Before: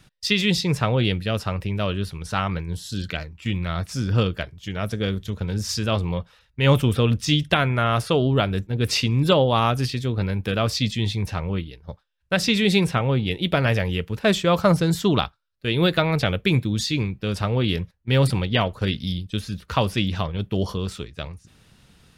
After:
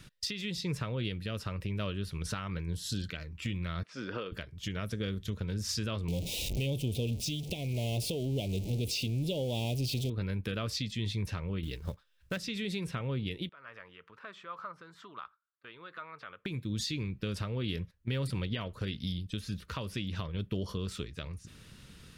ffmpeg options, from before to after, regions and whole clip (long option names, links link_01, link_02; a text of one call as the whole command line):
ffmpeg -i in.wav -filter_complex "[0:a]asettb=1/sr,asplit=3[link_01][link_02][link_03];[link_01]atrim=end=3.834[link_04];[link_02]atrim=start=3.83:end=4.32,asetpts=PTS-STARTPTS,afade=type=in:duration=0.004:curve=qsin,afade=type=out:start_time=0.486:duration=0.004:curve=qsin,highpass=480,lowpass=3900,highshelf=frequency=2900:gain=-10[link_05];[link_03]atrim=start=4.316[link_06];[link_04][link_05]acrossfade=duration=0.004:curve1=hsin:curve2=qsin[link_07];[link_07][link_06]acrossfade=duration=0.004:curve1=qsin:curve2=hsin,asettb=1/sr,asplit=3[link_08][link_09][link_10];[link_08]atrim=end=6.084[link_11];[link_09]atrim=start=6.08:end=10.1,asetpts=PTS-STARTPTS,afade=type=in:duration=0.004:curve=qsin,afade=type=out:start_time=4.016:duration=0.004:curve=qsin,aeval=exprs='val(0)+0.5*0.0668*sgn(val(0))':channel_layout=same,asuperstop=centerf=1400:order=8:qfactor=0.86[link_12];[link_10]atrim=start=10.096[link_13];[link_11][link_12]acrossfade=duration=0.004:curve1=hsin:curve2=qsin[link_14];[link_14][link_13]acrossfade=duration=0.004:curve1=qsin:curve2=hsin,asettb=1/sr,asplit=3[link_15][link_16][link_17];[link_15]atrim=end=11.634[link_18];[link_16]atrim=start=11.63:end=12.38,asetpts=PTS-STARTPTS,afade=type=in:duration=0.004:curve=qsin,afade=type=out:start_time=0.746:duration=0.004:curve=qsin,acontrast=87,acrusher=bits=6:mode=log:mix=0:aa=0.000001[link_19];[link_17]atrim=start=12.376[link_20];[link_18][link_19]acrossfade=duration=0.004:curve1=hsin:curve2=qsin[link_21];[link_21][link_20]acrossfade=duration=0.004:curve1=qsin:curve2=hsin,asettb=1/sr,asplit=3[link_22][link_23][link_24];[link_22]atrim=end=13.494[link_25];[link_23]atrim=start=13.49:end=16.46,asetpts=PTS-STARTPTS,afade=type=in:duration=0.004:curve=qsin,afade=type=out:start_time=2.966:duration=0.004:curve=qsin,acompressor=threshold=-32dB:ratio=4:attack=3.2:release=140:knee=1:detection=peak,bandpass=frequency=1200:width_type=q:width=3.2[link_26];[link_24]atrim=start=16.456[link_27];[link_25][link_26]acrossfade=duration=0.004:curve1=hsin:curve2=qsin[link_28];[link_28][link_27]acrossfade=duration=0.004:curve1=qsin:curve2=hsin,equalizer=frequency=770:width_type=o:width=0.52:gain=-9.5,acompressor=threshold=-34dB:ratio=4,alimiter=level_in=1.5dB:limit=-24dB:level=0:latency=1:release=259,volume=-1.5dB,volume=1.5dB" out.wav